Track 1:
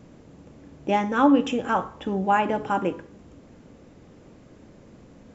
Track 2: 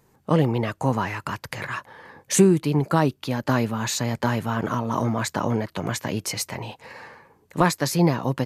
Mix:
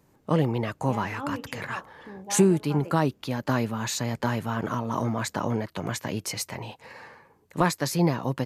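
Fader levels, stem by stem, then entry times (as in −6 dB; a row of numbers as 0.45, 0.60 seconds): −16.5, −3.5 decibels; 0.00, 0.00 seconds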